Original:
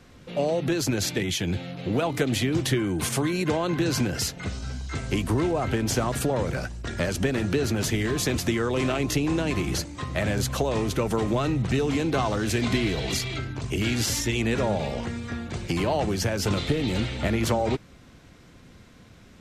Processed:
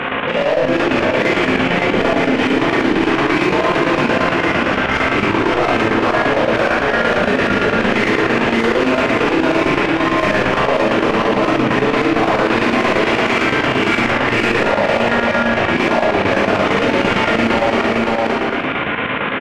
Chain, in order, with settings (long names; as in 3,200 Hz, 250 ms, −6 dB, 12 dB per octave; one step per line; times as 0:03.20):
variable-slope delta modulation 16 kbit/s
low-shelf EQ 150 Hz −7 dB
brickwall limiter −20 dBFS, peak gain reduction 6.5 dB
mid-hump overdrive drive 38 dB, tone 2,300 Hz, clips at −2.5 dBFS
on a send: single-tap delay 545 ms −5 dB
on the sum: four-comb reverb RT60 1.1 s, combs from 27 ms, DRR −7 dB
square-wave tremolo 8.8 Hz, depth 65%, duty 75%
envelope flattener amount 70%
level −13.5 dB